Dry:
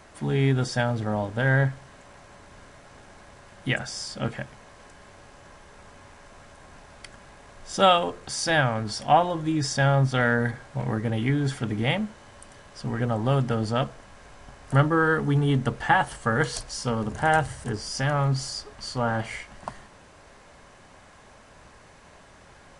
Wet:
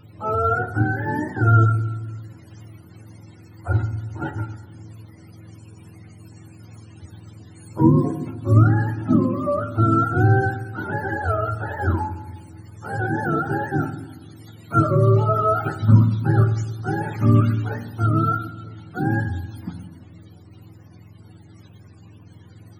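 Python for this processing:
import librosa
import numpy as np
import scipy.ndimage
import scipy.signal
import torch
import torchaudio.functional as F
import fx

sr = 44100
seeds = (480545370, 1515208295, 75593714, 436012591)

y = fx.octave_mirror(x, sr, pivot_hz=430.0)
y = fx.air_absorb(y, sr, metres=110.0, at=(18.5, 18.94), fade=0.02)
y = fx.rev_fdn(y, sr, rt60_s=1.1, lf_ratio=1.6, hf_ratio=0.25, size_ms=55.0, drr_db=8.5)
y = y * librosa.db_to_amplitude(2.5)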